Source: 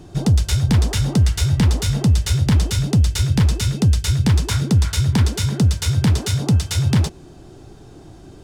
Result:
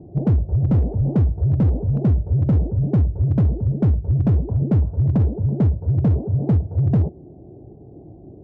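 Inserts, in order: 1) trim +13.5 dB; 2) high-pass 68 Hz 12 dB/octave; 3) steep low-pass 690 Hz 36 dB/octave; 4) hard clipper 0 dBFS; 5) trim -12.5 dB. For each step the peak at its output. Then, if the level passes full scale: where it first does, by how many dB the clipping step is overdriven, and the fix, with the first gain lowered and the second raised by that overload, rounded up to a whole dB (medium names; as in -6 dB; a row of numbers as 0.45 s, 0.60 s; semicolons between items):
+7.5 dBFS, +7.0 dBFS, +6.0 dBFS, 0.0 dBFS, -12.5 dBFS; step 1, 6.0 dB; step 1 +7.5 dB, step 5 -6.5 dB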